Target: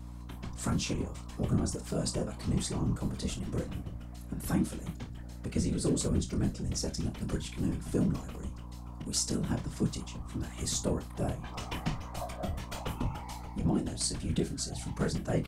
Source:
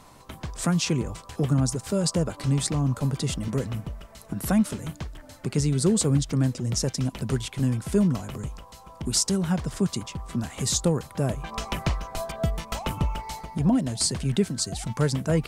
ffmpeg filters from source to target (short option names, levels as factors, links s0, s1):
-af "afftfilt=real='hypot(re,im)*cos(2*PI*random(0))':imag='hypot(re,im)*sin(2*PI*random(1))':win_size=512:overlap=0.75,aecho=1:1:25|52:0.398|0.188,aeval=exprs='val(0)+0.01*(sin(2*PI*60*n/s)+sin(2*PI*2*60*n/s)/2+sin(2*PI*3*60*n/s)/3+sin(2*PI*4*60*n/s)/4+sin(2*PI*5*60*n/s)/5)':c=same,volume=0.75"